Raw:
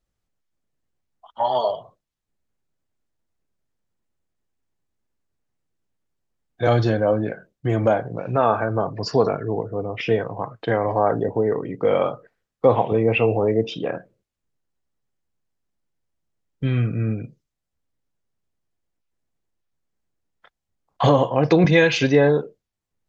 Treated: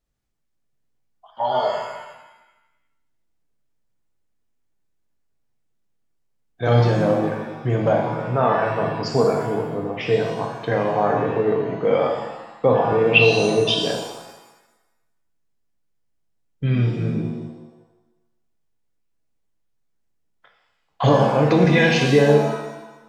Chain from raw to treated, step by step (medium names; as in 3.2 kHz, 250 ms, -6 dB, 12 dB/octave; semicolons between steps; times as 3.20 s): 13.01–13.84 s: resonant high shelf 2.4 kHz +8.5 dB, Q 3; pitch-shifted reverb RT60 1 s, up +7 st, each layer -8 dB, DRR 1.5 dB; trim -2 dB